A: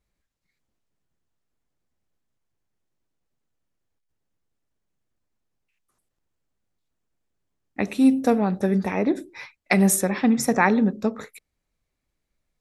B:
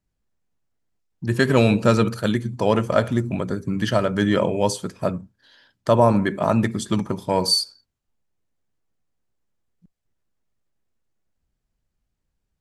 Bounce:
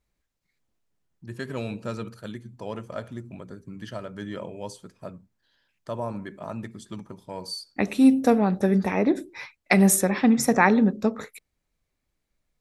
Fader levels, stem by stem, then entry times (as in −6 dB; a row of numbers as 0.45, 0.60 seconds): +0.5, −15.5 decibels; 0.00, 0.00 seconds